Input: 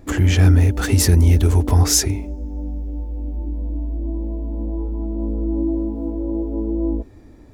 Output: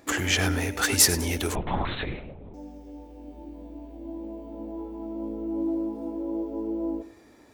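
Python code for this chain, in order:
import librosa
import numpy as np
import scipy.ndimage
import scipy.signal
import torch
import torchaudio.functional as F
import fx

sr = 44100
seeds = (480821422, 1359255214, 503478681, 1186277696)

y = fx.highpass(x, sr, hz=930.0, slope=6)
y = fx.echo_feedback(y, sr, ms=100, feedback_pct=31, wet_db=-15)
y = fx.lpc_vocoder(y, sr, seeds[0], excitation='whisper', order=8, at=(1.55, 2.54))
y = F.gain(torch.from_numpy(y), 2.5).numpy()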